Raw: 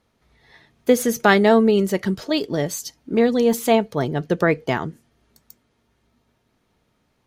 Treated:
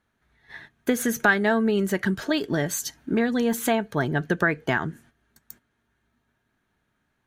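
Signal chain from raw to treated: gate -53 dBFS, range -11 dB; graphic EQ with 31 bands 500 Hz -7 dB, 1.6 kHz +12 dB, 5 kHz -7 dB; compression 2.5:1, threshold -27 dBFS, peak gain reduction 14.5 dB; trim +4 dB

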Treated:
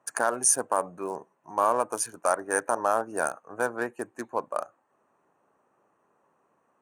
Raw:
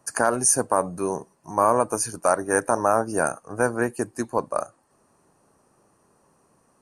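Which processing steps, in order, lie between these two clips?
local Wiener filter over 9 samples; high-pass 600 Hz 6 dB/octave; trim -2 dB

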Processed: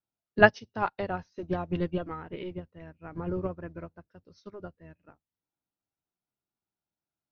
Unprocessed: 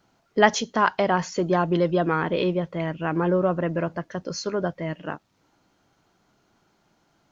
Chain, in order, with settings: octave divider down 1 oct, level -5 dB; band-stop 1.1 kHz, Q 16; formant shift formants -2 st; upward expansion 2.5:1, over -34 dBFS; trim +1 dB

